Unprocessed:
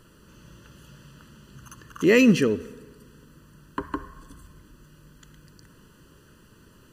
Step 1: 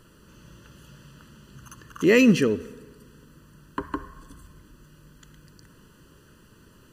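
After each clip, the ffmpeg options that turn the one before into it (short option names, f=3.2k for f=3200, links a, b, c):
-af anull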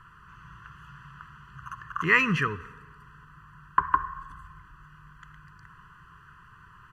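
-af "firequalizer=gain_entry='entry(160,0);entry(230,-17);entry(420,-12);entry(690,-29);entry(1000,13);entry(3900,-11);entry(11000,-16)':delay=0.05:min_phase=1"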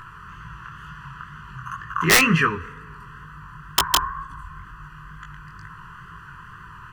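-filter_complex "[0:a]asplit=2[a][b];[b]acompressor=mode=upward:threshold=-37dB:ratio=2.5,volume=-2dB[c];[a][c]amix=inputs=2:normalize=0,aeval=exprs='(mod(2.51*val(0)+1,2)-1)/2.51':c=same,flanger=delay=18:depth=7.2:speed=2.1,volume=5dB"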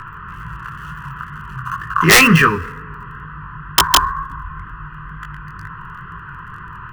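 -filter_complex "[0:a]acrossover=split=140|2900[a][b][c];[c]acrusher=bits=6:dc=4:mix=0:aa=0.000001[d];[a][b][d]amix=inputs=3:normalize=0,apsyclip=11dB,volume=-2.5dB"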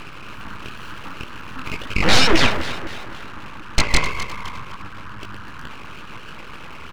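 -filter_complex "[0:a]asplit=2[a][b];[b]adelay=257,lowpass=f=3.9k:p=1,volume=-13dB,asplit=2[c][d];[d]adelay=257,lowpass=f=3.9k:p=1,volume=0.52,asplit=2[e][f];[f]adelay=257,lowpass=f=3.9k:p=1,volume=0.52,asplit=2[g][h];[h]adelay=257,lowpass=f=3.9k:p=1,volume=0.52,asplit=2[i][j];[j]adelay=257,lowpass=f=3.9k:p=1,volume=0.52[k];[a][c][e][g][i][k]amix=inputs=6:normalize=0,aeval=exprs='abs(val(0))':c=same,acrossover=split=8000[l][m];[m]acompressor=threshold=-47dB:ratio=4:attack=1:release=60[n];[l][n]amix=inputs=2:normalize=0,volume=-1dB"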